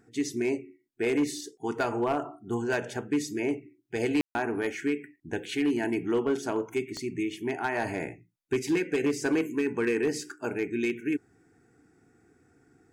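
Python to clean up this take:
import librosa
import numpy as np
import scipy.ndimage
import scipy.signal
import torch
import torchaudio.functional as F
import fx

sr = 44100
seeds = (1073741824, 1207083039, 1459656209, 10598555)

y = fx.fix_declip(x, sr, threshold_db=-20.0)
y = fx.fix_declick_ar(y, sr, threshold=10.0)
y = fx.fix_ambience(y, sr, seeds[0], print_start_s=11.25, print_end_s=11.75, start_s=4.21, end_s=4.35)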